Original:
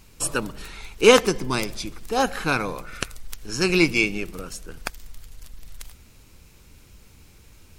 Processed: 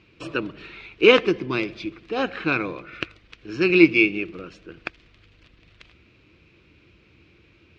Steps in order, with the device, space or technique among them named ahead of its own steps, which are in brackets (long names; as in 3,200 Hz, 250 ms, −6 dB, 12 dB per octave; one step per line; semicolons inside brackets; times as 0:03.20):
guitar cabinet (loudspeaker in its box 88–3,800 Hz, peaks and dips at 230 Hz −3 dB, 330 Hz +10 dB, 850 Hz −8 dB, 2,500 Hz +7 dB)
level −2 dB